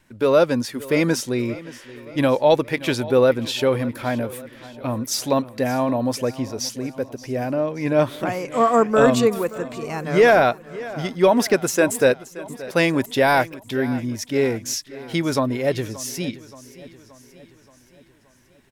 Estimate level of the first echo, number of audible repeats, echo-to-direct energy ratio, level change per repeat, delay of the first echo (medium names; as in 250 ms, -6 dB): -18.0 dB, 4, -16.5 dB, -5.0 dB, 576 ms